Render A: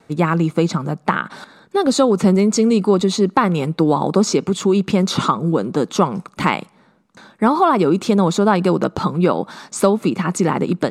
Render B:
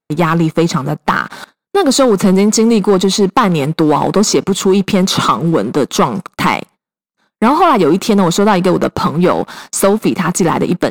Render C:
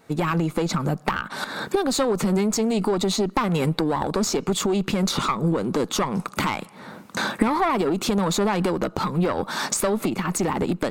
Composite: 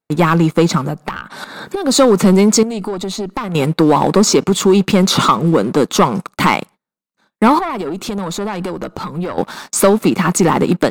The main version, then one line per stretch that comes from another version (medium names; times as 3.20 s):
B
0.88–1.88 s: from C, crossfade 0.16 s
2.63–3.55 s: from C
7.59–9.38 s: from C
not used: A